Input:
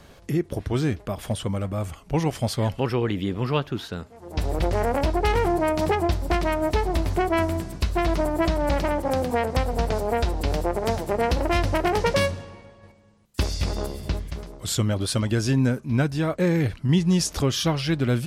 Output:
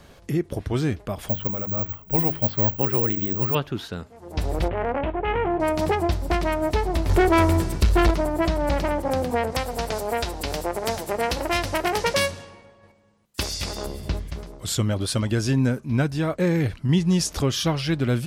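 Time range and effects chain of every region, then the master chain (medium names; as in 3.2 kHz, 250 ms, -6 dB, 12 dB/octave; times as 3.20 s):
1.29–3.55 s: distance through air 340 m + hum notches 50/100/150/200/250/300/350/400 Hz + careless resampling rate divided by 2×, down filtered, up zero stuff
4.68–5.60 s: steep low-pass 3.1 kHz 48 dB/octave + bass shelf 130 Hz -6.5 dB + transient shaper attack -9 dB, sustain -4 dB
7.09–8.11 s: comb 2.2 ms, depth 37% + waveshaping leveller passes 2
9.52–13.85 s: tilt EQ +2 dB/octave + tape noise reduction on one side only decoder only
whole clip: none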